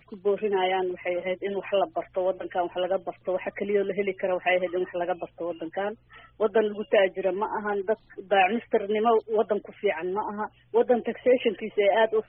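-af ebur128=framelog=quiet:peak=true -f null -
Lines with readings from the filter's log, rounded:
Integrated loudness:
  I:         -26.6 LUFS
  Threshold: -36.7 LUFS
Loudness range:
  LRA:         3.3 LU
  Threshold: -46.9 LUFS
  LRA low:   -28.6 LUFS
  LRA high:  -25.3 LUFS
True peak:
  Peak:       -9.3 dBFS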